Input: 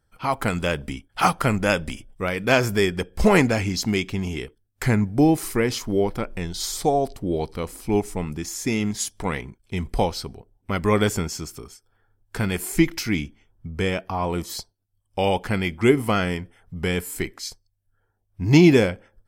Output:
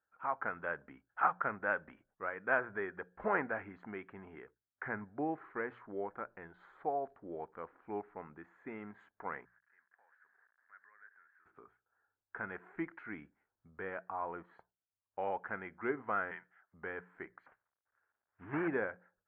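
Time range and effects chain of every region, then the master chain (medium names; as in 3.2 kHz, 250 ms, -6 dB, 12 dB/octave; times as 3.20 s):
9.45–11.46 s: jump at every zero crossing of -36 dBFS + compression 8:1, threshold -27 dBFS + band-pass filter 1.7 kHz, Q 8.6
16.31–16.74 s: frequency weighting ITU-R 468 + frequency shift -45 Hz
17.46–18.68 s: CVSD coder 16 kbps + treble shelf 2.4 kHz +10 dB
whole clip: elliptic low-pass 1.6 kHz, stop band 70 dB; differentiator; hum notches 60/120/180 Hz; trim +6.5 dB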